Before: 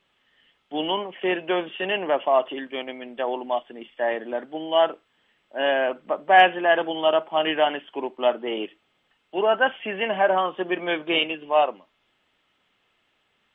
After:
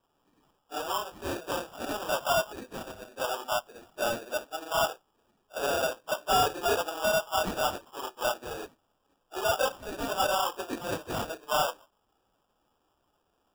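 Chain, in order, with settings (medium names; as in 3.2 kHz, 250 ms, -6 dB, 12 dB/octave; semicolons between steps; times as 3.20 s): phase randomisation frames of 50 ms; saturation -18 dBFS, distortion -9 dB; three-band isolator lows -21 dB, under 550 Hz, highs -12 dB, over 2.1 kHz; sample-rate reducer 2.1 kHz, jitter 0%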